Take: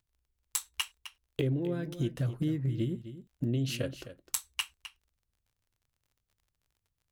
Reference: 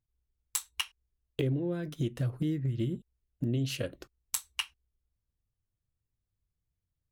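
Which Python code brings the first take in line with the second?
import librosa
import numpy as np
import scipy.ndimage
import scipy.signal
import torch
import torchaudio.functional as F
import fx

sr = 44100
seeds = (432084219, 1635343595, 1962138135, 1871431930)

y = fx.fix_declick_ar(x, sr, threshold=6.5)
y = fx.fix_echo_inverse(y, sr, delay_ms=259, level_db=-13.0)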